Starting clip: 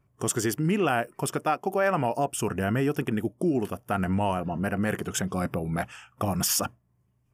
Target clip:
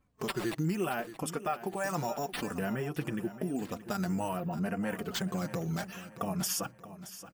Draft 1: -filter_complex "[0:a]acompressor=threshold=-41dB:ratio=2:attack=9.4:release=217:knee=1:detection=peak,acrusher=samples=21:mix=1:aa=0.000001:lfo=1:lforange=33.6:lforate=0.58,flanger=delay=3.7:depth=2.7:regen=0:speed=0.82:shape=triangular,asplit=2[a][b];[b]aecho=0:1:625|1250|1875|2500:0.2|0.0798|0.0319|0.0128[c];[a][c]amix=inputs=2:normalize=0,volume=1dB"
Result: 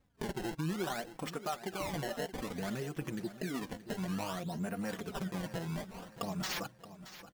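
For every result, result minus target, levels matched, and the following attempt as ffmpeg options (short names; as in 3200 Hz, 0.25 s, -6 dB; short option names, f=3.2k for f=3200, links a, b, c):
decimation with a swept rate: distortion +11 dB; compressor: peak gain reduction +4 dB
-filter_complex "[0:a]acompressor=threshold=-41dB:ratio=2:attack=9.4:release=217:knee=1:detection=peak,acrusher=samples=4:mix=1:aa=0.000001:lfo=1:lforange=6.4:lforate=0.58,flanger=delay=3.7:depth=2.7:regen=0:speed=0.82:shape=triangular,asplit=2[a][b];[b]aecho=0:1:625|1250|1875|2500:0.2|0.0798|0.0319|0.0128[c];[a][c]amix=inputs=2:normalize=0,volume=1dB"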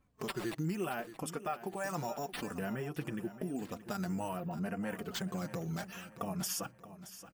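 compressor: peak gain reduction +4 dB
-filter_complex "[0:a]acompressor=threshold=-32.5dB:ratio=2:attack=9.4:release=217:knee=1:detection=peak,acrusher=samples=4:mix=1:aa=0.000001:lfo=1:lforange=6.4:lforate=0.58,flanger=delay=3.7:depth=2.7:regen=0:speed=0.82:shape=triangular,asplit=2[a][b];[b]aecho=0:1:625|1250|1875|2500:0.2|0.0798|0.0319|0.0128[c];[a][c]amix=inputs=2:normalize=0,volume=1dB"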